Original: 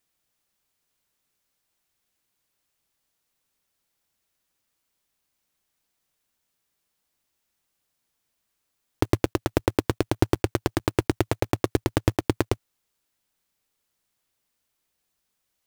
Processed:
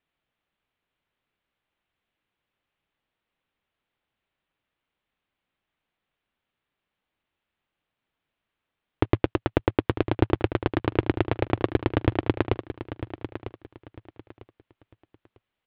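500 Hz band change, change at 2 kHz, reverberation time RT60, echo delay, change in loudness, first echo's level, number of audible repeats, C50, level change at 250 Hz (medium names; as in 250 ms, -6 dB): +0.5 dB, +0.5 dB, no reverb, 949 ms, -0.5 dB, -11.5 dB, 3, no reverb, +0.5 dB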